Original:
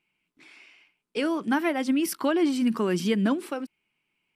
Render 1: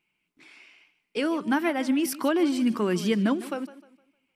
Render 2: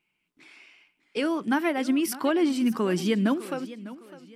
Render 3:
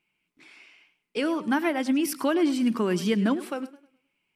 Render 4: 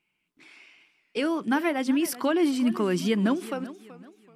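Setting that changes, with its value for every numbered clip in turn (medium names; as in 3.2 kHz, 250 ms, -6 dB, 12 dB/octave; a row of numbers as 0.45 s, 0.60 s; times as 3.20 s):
modulated delay, time: 153 ms, 605 ms, 104 ms, 381 ms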